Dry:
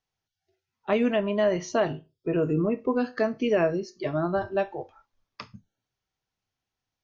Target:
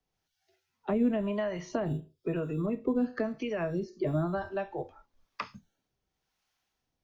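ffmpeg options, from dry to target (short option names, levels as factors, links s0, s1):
-filter_complex "[0:a]acrossover=split=2700[s0][s1];[s1]acompressor=threshold=0.00282:ratio=4:attack=1:release=60[s2];[s0][s2]amix=inputs=2:normalize=0,equalizer=f=110:t=o:w=0.27:g=-13.5,acrossover=split=170[s3][s4];[s4]acompressor=threshold=0.0178:ratio=6[s5];[s3][s5]amix=inputs=2:normalize=0,acrossover=split=630[s6][s7];[s6]aeval=exprs='val(0)*(1-0.7/2+0.7/2*cos(2*PI*1*n/s))':c=same[s8];[s7]aeval=exprs='val(0)*(1-0.7/2-0.7/2*cos(2*PI*1*n/s))':c=same[s9];[s8][s9]amix=inputs=2:normalize=0,acrossover=split=110|590[s10][s11][s12];[s10]acrusher=samples=12:mix=1:aa=0.000001[s13];[s13][s11][s12]amix=inputs=3:normalize=0,volume=2.51"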